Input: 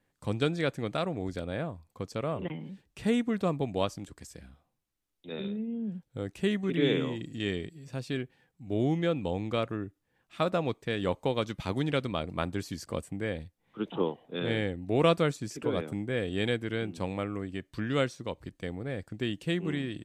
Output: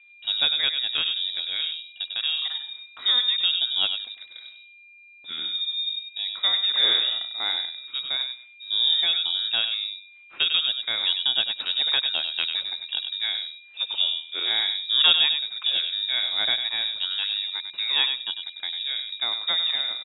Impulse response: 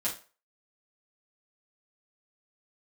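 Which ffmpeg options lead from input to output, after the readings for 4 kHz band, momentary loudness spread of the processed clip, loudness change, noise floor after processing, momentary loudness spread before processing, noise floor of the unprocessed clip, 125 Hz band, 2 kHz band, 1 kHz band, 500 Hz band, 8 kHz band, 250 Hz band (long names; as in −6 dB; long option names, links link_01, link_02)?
+22.0 dB, 12 LU, +9.5 dB, −50 dBFS, 12 LU, −79 dBFS, below −25 dB, +7.0 dB, −2.5 dB, −15.5 dB, below −30 dB, below −20 dB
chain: -filter_complex "[0:a]aeval=exprs='val(0)+0.00178*sin(2*PI*1500*n/s)':channel_layout=same,asplit=2[link_01][link_02];[link_02]adelay=98,lowpass=frequency=1400:poles=1,volume=-4.5dB,asplit=2[link_03][link_04];[link_04]adelay=98,lowpass=frequency=1400:poles=1,volume=0.19,asplit=2[link_05][link_06];[link_06]adelay=98,lowpass=frequency=1400:poles=1,volume=0.19[link_07];[link_01][link_03][link_05][link_07]amix=inputs=4:normalize=0,lowpass=frequency=3300:width_type=q:width=0.5098,lowpass=frequency=3300:width_type=q:width=0.6013,lowpass=frequency=3300:width_type=q:width=0.9,lowpass=frequency=3300:width_type=q:width=2.563,afreqshift=-3900,volume=4.5dB"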